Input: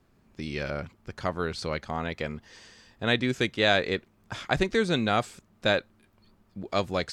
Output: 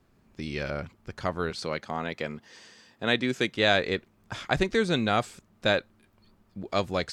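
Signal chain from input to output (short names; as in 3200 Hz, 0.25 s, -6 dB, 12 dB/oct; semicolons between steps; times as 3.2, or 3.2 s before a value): 1.5–3.54 HPF 150 Hz 12 dB/oct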